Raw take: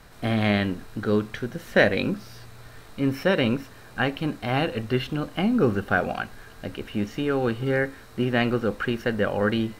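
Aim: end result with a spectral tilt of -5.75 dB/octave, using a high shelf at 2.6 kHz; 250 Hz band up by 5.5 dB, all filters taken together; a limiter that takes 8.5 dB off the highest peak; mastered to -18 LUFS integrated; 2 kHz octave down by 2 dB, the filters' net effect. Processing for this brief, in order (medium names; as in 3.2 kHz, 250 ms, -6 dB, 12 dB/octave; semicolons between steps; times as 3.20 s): peaking EQ 250 Hz +6.5 dB; peaking EQ 2 kHz -4.5 dB; treble shelf 2.6 kHz +4.5 dB; trim +6 dB; peak limiter -6 dBFS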